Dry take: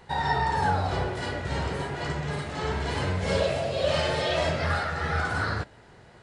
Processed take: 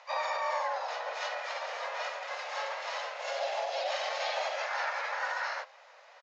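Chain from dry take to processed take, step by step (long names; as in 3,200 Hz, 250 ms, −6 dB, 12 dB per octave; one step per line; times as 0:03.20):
sub-octave generator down 1 octave, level −1 dB
brickwall limiter −22.5 dBFS, peak gain reduction 10 dB
pitch-shifted copies added −7 semitones −2 dB, +4 semitones −1 dB
Chebyshev band-pass filter 540–6,800 Hz, order 5
level −3 dB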